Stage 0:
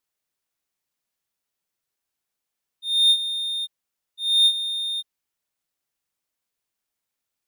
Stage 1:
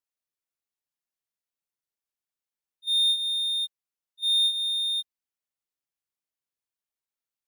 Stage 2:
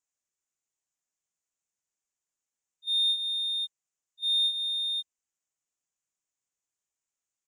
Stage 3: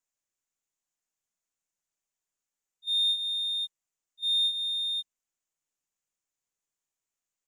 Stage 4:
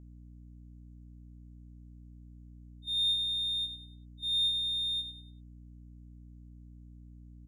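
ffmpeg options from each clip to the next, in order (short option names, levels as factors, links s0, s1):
-af "agate=range=0.282:threshold=0.0282:ratio=16:detection=peak,acompressor=threshold=0.1:ratio=6"
-af "firequalizer=gain_entry='entry(2800,0);entry(4200,-5);entry(6900,13);entry(12000,-16)':delay=0.05:min_phase=1"
-filter_complex "[0:a]acrossover=split=6700|7300|7700[s0][s1][s2][s3];[s1]aeval=exprs='max(val(0),0)':c=same[s4];[s2]aphaser=in_gain=1:out_gain=1:delay=4.4:decay=0.67:speed=0.95:type=triangular[s5];[s0][s4][s5][s3]amix=inputs=4:normalize=0"
-filter_complex "[0:a]asplit=2[s0][s1];[s1]aecho=0:1:97|194|291|388:0.355|0.117|0.0386|0.0128[s2];[s0][s2]amix=inputs=2:normalize=0,aeval=exprs='val(0)+0.00631*(sin(2*PI*60*n/s)+sin(2*PI*2*60*n/s)/2+sin(2*PI*3*60*n/s)/3+sin(2*PI*4*60*n/s)/4+sin(2*PI*5*60*n/s)/5)':c=same,volume=0.531"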